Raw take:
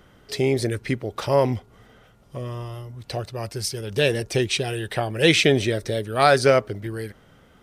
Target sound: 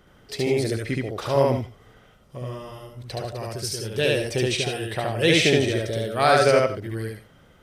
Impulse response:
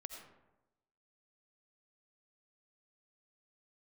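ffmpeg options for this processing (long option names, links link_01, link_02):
-filter_complex "[0:a]asplit=2[link_01][link_02];[1:a]atrim=start_sample=2205,afade=type=out:start_time=0.14:duration=0.01,atrim=end_sample=6615,adelay=72[link_03];[link_02][link_03]afir=irnorm=-1:irlink=0,volume=5dB[link_04];[link_01][link_04]amix=inputs=2:normalize=0,volume=-3.5dB"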